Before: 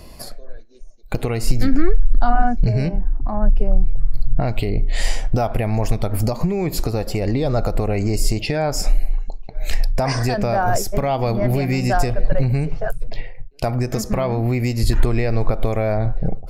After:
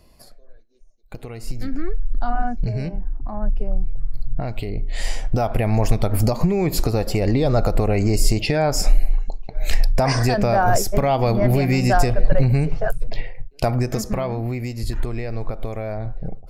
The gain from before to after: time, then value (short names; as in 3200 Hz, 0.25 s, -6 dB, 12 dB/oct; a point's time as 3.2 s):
1.21 s -13 dB
2.32 s -6 dB
4.86 s -6 dB
5.72 s +1.5 dB
13.65 s +1.5 dB
14.75 s -8 dB